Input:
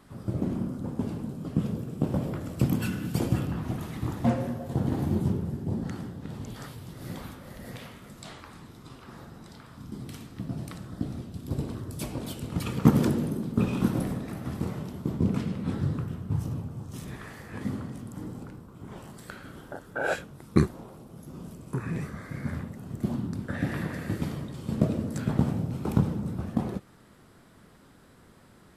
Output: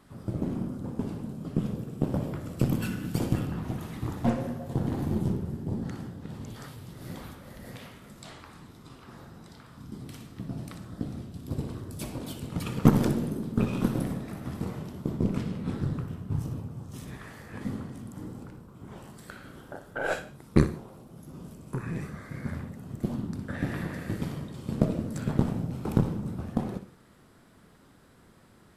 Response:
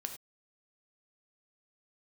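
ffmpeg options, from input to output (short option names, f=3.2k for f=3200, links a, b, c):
-filter_complex "[0:a]aeval=exprs='0.708*(cos(1*acos(clip(val(0)/0.708,-1,1)))-cos(1*PI/2))+0.0562*(cos(6*acos(clip(val(0)/0.708,-1,1)))-cos(6*PI/2))+0.0224*(cos(7*acos(clip(val(0)/0.708,-1,1)))-cos(7*PI/2))':c=same,asplit=2[a][b];[1:a]atrim=start_sample=2205,adelay=61[c];[b][c]afir=irnorm=-1:irlink=0,volume=-10.5dB[d];[a][d]amix=inputs=2:normalize=0"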